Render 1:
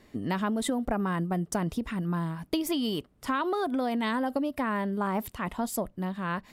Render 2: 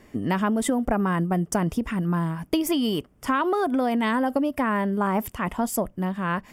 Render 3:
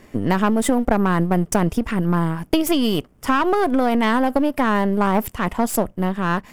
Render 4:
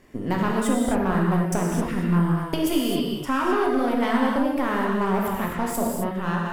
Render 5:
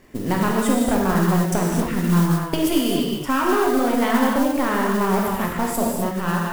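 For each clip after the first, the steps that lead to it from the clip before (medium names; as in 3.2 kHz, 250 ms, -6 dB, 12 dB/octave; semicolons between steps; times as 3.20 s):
peaking EQ 4 kHz -14.5 dB 0.23 oct; trim +5.5 dB
partial rectifier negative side -7 dB; trim +7 dB
gated-style reverb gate 290 ms flat, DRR -2.5 dB; trim -8.5 dB
modulation noise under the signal 18 dB; trim +3 dB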